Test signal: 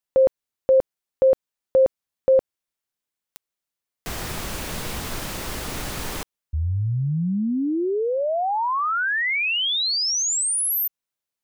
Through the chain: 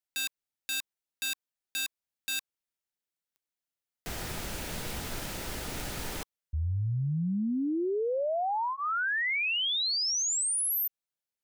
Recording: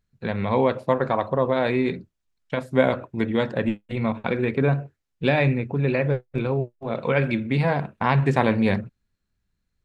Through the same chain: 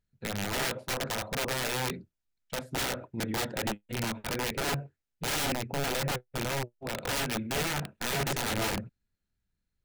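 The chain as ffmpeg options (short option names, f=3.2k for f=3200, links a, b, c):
-af "aeval=exprs='(mod(8.41*val(0)+1,2)-1)/8.41':c=same,bandreject=f=1.1k:w=8.4,volume=-6.5dB"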